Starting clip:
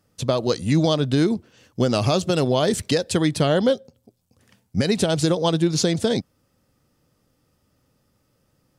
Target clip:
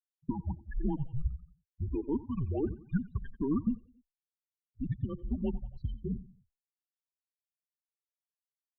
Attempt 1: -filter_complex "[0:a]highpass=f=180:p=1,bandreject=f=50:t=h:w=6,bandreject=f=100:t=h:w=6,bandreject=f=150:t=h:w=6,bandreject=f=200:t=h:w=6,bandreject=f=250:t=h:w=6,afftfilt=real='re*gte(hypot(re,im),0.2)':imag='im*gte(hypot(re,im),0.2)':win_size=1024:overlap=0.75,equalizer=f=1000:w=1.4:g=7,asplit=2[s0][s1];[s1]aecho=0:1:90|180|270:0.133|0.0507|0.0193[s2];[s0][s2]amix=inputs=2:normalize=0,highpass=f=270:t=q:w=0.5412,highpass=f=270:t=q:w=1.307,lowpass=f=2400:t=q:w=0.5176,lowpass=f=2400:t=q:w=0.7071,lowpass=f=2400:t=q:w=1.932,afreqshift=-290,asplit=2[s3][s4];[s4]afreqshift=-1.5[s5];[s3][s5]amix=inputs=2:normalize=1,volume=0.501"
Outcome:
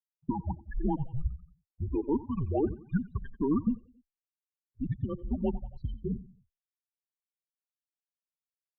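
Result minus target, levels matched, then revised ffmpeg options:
1 kHz band +5.5 dB
-filter_complex "[0:a]highpass=f=180:p=1,bandreject=f=50:t=h:w=6,bandreject=f=100:t=h:w=6,bandreject=f=150:t=h:w=6,bandreject=f=200:t=h:w=6,bandreject=f=250:t=h:w=6,afftfilt=real='re*gte(hypot(re,im),0.2)':imag='im*gte(hypot(re,im),0.2)':win_size=1024:overlap=0.75,equalizer=f=1000:w=1.4:g=-3,asplit=2[s0][s1];[s1]aecho=0:1:90|180|270:0.133|0.0507|0.0193[s2];[s0][s2]amix=inputs=2:normalize=0,highpass=f=270:t=q:w=0.5412,highpass=f=270:t=q:w=1.307,lowpass=f=2400:t=q:w=0.5176,lowpass=f=2400:t=q:w=0.7071,lowpass=f=2400:t=q:w=1.932,afreqshift=-290,asplit=2[s3][s4];[s4]afreqshift=-1.5[s5];[s3][s5]amix=inputs=2:normalize=1,volume=0.501"

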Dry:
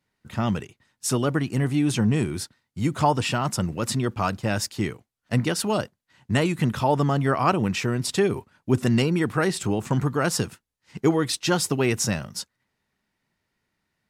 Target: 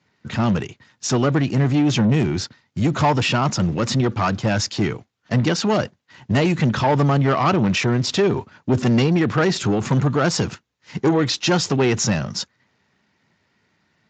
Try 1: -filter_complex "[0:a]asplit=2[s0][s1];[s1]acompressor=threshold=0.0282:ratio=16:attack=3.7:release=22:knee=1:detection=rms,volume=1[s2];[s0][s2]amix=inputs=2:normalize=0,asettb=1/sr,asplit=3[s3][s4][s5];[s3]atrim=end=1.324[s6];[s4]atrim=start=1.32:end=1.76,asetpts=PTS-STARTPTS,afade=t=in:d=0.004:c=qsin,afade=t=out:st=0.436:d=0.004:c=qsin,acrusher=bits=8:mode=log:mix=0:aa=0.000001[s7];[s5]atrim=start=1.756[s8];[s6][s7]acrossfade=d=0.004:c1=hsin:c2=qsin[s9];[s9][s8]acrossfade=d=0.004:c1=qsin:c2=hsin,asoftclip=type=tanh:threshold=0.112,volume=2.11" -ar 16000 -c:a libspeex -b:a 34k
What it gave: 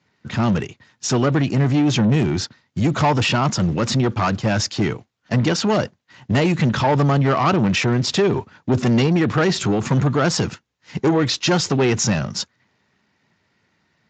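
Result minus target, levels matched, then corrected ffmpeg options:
compression: peak gain reduction -6 dB
-filter_complex "[0:a]asplit=2[s0][s1];[s1]acompressor=threshold=0.0133:ratio=16:attack=3.7:release=22:knee=1:detection=rms,volume=1[s2];[s0][s2]amix=inputs=2:normalize=0,asettb=1/sr,asplit=3[s3][s4][s5];[s3]atrim=end=1.324[s6];[s4]atrim=start=1.32:end=1.76,asetpts=PTS-STARTPTS,afade=t=in:d=0.004:c=qsin,afade=t=out:st=0.436:d=0.004:c=qsin,acrusher=bits=8:mode=log:mix=0:aa=0.000001[s7];[s5]atrim=start=1.756[s8];[s6][s7]acrossfade=d=0.004:c1=hsin:c2=qsin[s9];[s9][s8]acrossfade=d=0.004:c1=qsin:c2=hsin,asoftclip=type=tanh:threshold=0.112,volume=2.11" -ar 16000 -c:a libspeex -b:a 34k

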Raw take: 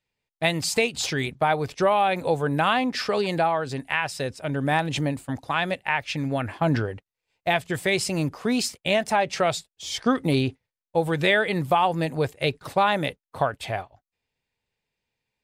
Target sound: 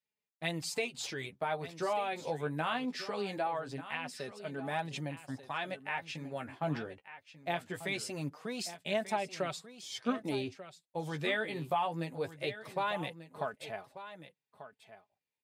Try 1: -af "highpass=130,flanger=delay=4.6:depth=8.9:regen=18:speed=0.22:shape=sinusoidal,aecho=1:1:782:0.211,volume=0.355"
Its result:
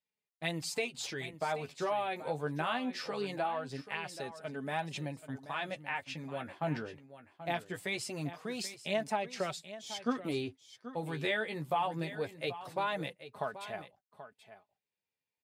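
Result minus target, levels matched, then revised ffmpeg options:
echo 408 ms early
-af "highpass=130,flanger=delay=4.6:depth=8.9:regen=18:speed=0.22:shape=sinusoidal,aecho=1:1:1190:0.211,volume=0.355"

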